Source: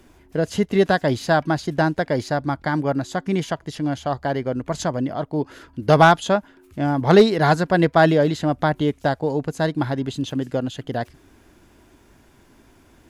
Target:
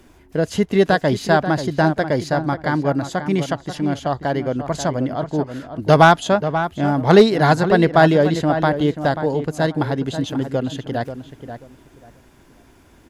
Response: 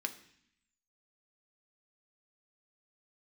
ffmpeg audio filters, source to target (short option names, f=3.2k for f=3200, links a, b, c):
-filter_complex "[0:a]asplit=2[a][b];[b]adelay=536,lowpass=f=2.1k:p=1,volume=-9.5dB,asplit=2[c][d];[d]adelay=536,lowpass=f=2.1k:p=1,volume=0.23,asplit=2[e][f];[f]adelay=536,lowpass=f=2.1k:p=1,volume=0.23[g];[a][c][e][g]amix=inputs=4:normalize=0,volume=2dB"